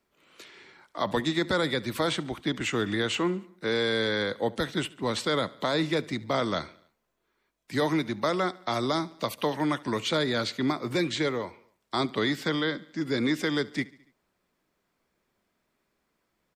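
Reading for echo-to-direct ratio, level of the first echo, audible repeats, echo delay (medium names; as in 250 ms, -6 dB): -20.5 dB, -22.0 dB, 3, 71 ms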